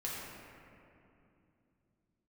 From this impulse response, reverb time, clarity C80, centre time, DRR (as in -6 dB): 2.8 s, -0.5 dB, 0.143 s, -6.5 dB